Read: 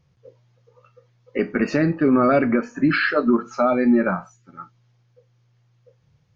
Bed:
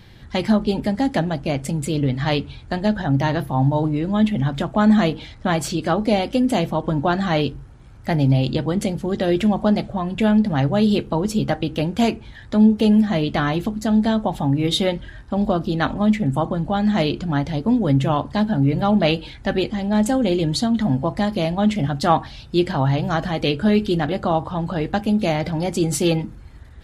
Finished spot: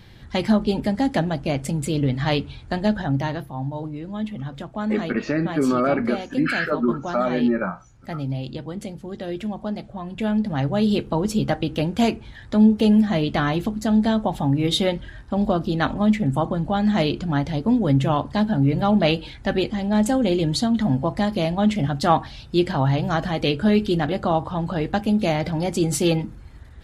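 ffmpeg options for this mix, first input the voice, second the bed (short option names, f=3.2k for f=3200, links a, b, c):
-filter_complex "[0:a]adelay=3550,volume=-3.5dB[a];[1:a]volume=8.5dB,afade=t=out:st=2.9:d=0.62:silence=0.334965,afade=t=in:st=9.81:d=1.4:silence=0.334965[b];[a][b]amix=inputs=2:normalize=0"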